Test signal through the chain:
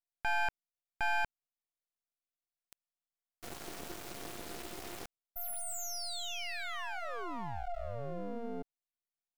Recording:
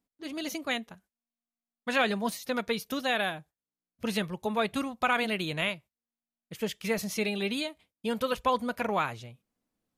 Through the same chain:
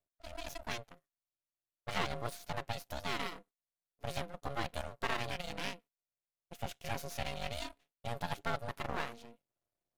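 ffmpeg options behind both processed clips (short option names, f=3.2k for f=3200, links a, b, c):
-af "aeval=exprs='val(0)*sin(2*PI*350*n/s)':c=same,aeval=exprs='max(val(0),0)':c=same,volume=-2.5dB"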